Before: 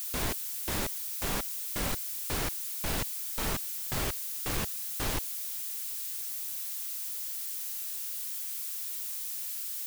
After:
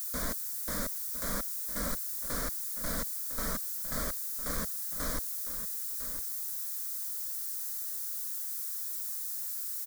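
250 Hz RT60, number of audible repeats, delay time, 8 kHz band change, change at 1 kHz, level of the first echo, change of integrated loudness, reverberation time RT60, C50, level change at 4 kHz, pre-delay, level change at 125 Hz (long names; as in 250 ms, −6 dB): no reverb audible, 1, 1,005 ms, −1.0 dB, −3.0 dB, −12.0 dB, −0.5 dB, no reverb audible, no reverb audible, −6.0 dB, no reverb audible, −6.0 dB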